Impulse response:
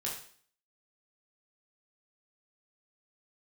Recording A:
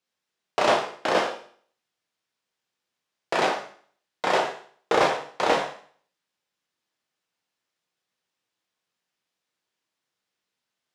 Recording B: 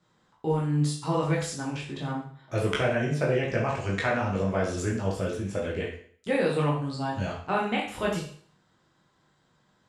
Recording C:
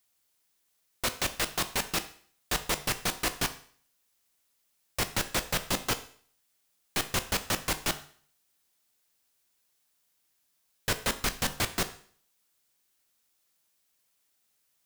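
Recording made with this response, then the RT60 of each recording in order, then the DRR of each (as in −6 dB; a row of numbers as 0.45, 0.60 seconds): B; 0.50, 0.50, 0.50 seconds; 1.0, −4.0, 9.5 decibels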